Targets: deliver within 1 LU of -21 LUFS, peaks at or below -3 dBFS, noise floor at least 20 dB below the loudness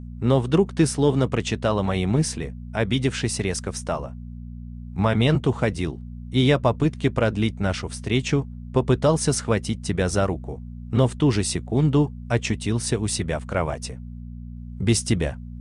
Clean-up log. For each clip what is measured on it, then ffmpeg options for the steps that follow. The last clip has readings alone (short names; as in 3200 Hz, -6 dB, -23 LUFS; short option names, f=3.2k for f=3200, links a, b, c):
hum 60 Hz; harmonics up to 240 Hz; hum level -35 dBFS; loudness -23.0 LUFS; peak -6.5 dBFS; loudness target -21.0 LUFS
-> -af "bandreject=f=60:t=h:w=4,bandreject=f=120:t=h:w=4,bandreject=f=180:t=h:w=4,bandreject=f=240:t=h:w=4"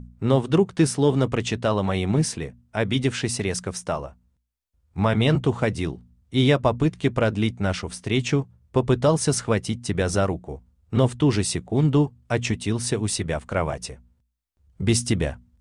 hum none; loudness -23.5 LUFS; peak -6.0 dBFS; loudness target -21.0 LUFS
-> -af "volume=2.5dB"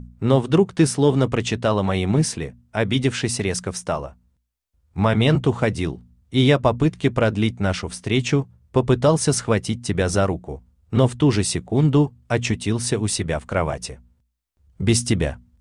loudness -21.0 LUFS; peak -3.5 dBFS; noise floor -66 dBFS